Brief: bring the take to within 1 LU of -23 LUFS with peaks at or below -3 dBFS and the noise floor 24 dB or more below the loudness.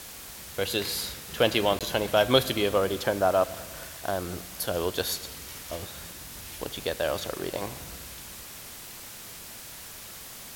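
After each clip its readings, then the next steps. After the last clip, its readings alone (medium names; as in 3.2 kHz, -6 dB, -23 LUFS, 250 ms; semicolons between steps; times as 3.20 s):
dropouts 1; longest dropout 17 ms; noise floor -43 dBFS; noise floor target -53 dBFS; loudness -28.5 LUFS; peak level -6.0 dBFS; loudness target -23.0 LUFS
-> interpolate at 1.79 s, 17 ms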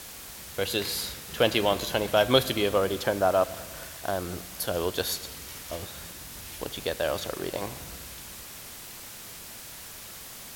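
dropouts 0; noise floor -43 dBFS; noise floor target -53 dBFS
-> noise reduction 10 dB, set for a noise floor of -43 dBFS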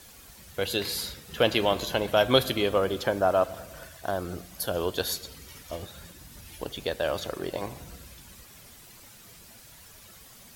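noise floor -51 dBFS; noise floor target -52 dBFS
-> noise reduction 6 dB, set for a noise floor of -51 dBFS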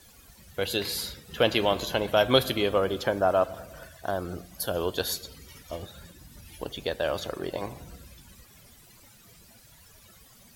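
noise floor -55 dBFS; loudness -28.0 LUFS; peak level -6.0 dBFS; loudness target -23.0 LUFS
-> trim +5 dB; peak limiter -3 dBFS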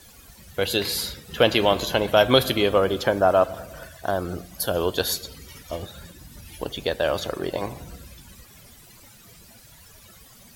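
loudness -23.0 LUFS; peak level -3.0 dBFS; noise floor -50 dBFS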